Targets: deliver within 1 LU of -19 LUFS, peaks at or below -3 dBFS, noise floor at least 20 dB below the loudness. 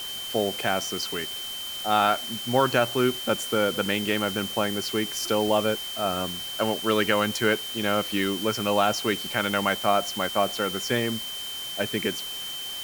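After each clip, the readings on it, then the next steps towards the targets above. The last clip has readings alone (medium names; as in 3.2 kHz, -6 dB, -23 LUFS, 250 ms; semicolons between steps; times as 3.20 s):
steady tone 3.1 kHz; tone level -33 dBFS; noise floor -35 dBFS; noise floor target -46 dBFS; loudness -25.5 LUFS; peak level -8.5 dBFS; loudness target -19.0 LUFS
-> band-stop 3.1 kHz, Q 30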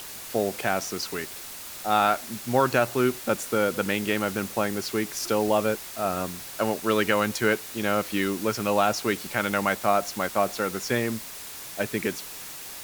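steady tone not found; noise floor -40 dBFS; noise floor target -46 dBFS
-> noise reduction 6 dB, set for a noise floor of -40 dBFS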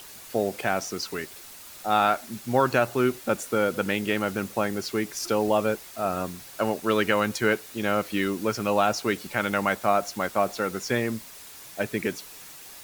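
noise floor -45 dBFS; noise floor target -47 dBFS
-> noise reduction 6 dB, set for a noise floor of -45 dBFS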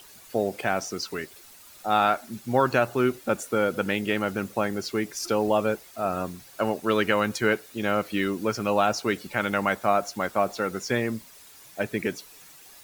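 noise floor -50 dBFS; loudness -26.5 LUFS; peak level -9.0 dBFS; loudness target -19.0 LUFS
-> trim +7.5 dB; peak limiter -3 dBFS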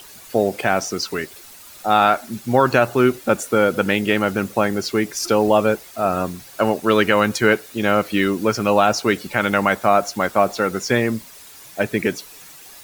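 loudness -19.0 LUFS; peak level -3.0 dBFS; noise floor -42 dBFS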